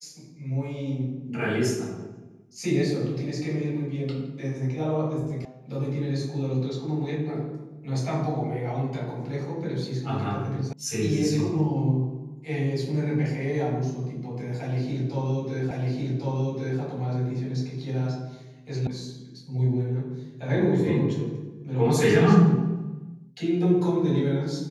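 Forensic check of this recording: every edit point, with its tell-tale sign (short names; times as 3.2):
5.45 sound cut off
10.73 sound cut off
15.71 repeat of the last 1.1 s
18.87 sound cut off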